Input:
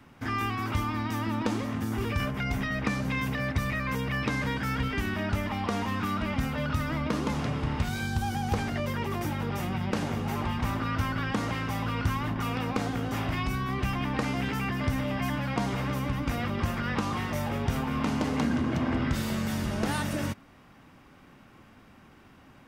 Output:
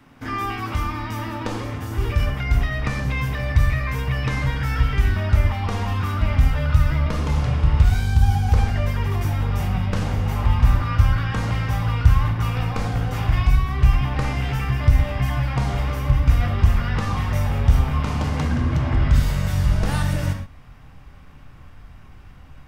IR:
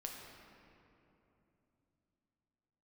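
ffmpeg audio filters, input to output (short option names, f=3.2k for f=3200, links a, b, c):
-filter_complex "[0:a]asubboost=boost=10.5:cutoff=80[a];[1:a]atrim=start_sample=2205,atrim=end_sample=6174[b];[a][b]afir=irnorm=-1:irlink=0,volume=7dB"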